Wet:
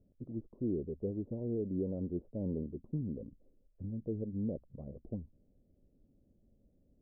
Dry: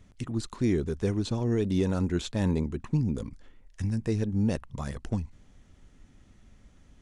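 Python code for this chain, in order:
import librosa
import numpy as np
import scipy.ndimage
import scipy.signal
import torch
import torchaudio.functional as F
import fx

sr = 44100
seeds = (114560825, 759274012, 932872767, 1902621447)

y = scipy.signal.sosfilt(scipy.signal.cheby1(4, 1.0, 580.0, 'lowpass', fs=sr, output='sos'), x)
y = fx.low_shelf(y, sr, hz=190.0, db=-9.5)
y = F.gain(torch.from_numpy(y), -5.0).numpy()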